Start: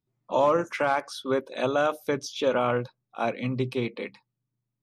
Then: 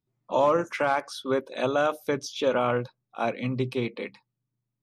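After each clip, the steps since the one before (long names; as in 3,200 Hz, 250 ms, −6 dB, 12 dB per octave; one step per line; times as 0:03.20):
no processing that can be heard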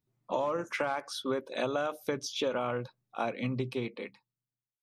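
fade-out on the ending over 1.59 s
downward compressor 6 to 1, threshold −28 dBFS, peak gain reduction 10.5 dB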